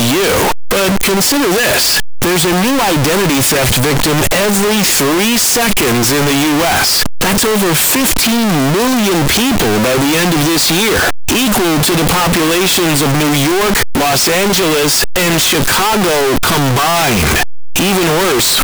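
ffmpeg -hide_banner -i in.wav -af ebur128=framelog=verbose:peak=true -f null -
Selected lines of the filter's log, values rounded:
Integrated loudness:
  I:         -10.8 LUFS
  Threshold: -20.8 LUFS
Loudness range:
  LRA:         0.8 LU
  Threshold: -30.7 LUFS
  LRA low:   -11.1 LUFS
  LRA high:  -10.3 LUFS
True peak:
  Peak:       -5.3 dBFS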